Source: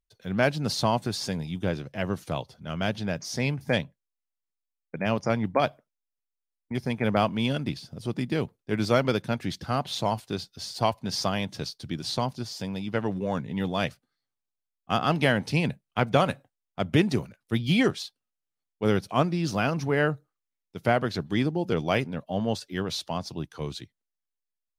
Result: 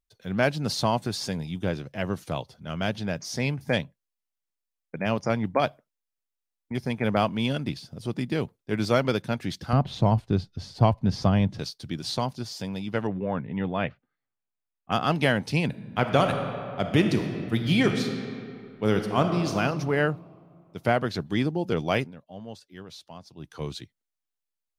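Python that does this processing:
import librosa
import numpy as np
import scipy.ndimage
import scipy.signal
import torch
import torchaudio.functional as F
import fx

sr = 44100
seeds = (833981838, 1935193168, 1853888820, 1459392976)

y = fx.riaa(x, sr, side='playback', at=(9.73, 11.59))
y = fx.lowpass(y, sr, hz=2700.0, slope=24, at=(13.07, 14.92))
y = fx.reverb_throw(y, sr, start_s=15.66, length_s=3.87, rt60_s=2.5, drr_db=5.0)
y = fx.edit(y, sr, fx.fade_down_up(start_s=22.02, length_s=1.47, db=-13.0, fade_s=0.15, curve='qua'), tone=tone)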